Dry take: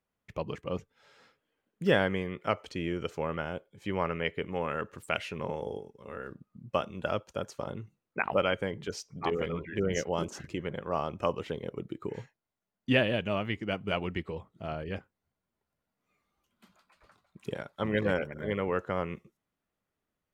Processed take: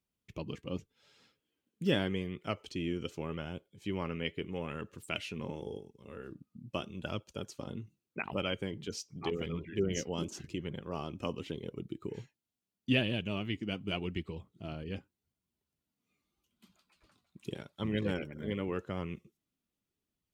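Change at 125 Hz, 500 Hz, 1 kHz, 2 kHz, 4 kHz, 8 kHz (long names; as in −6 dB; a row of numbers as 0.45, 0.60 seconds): −2.0, −7.0, −10.0, −6.5, −0.5, 0.0 decibels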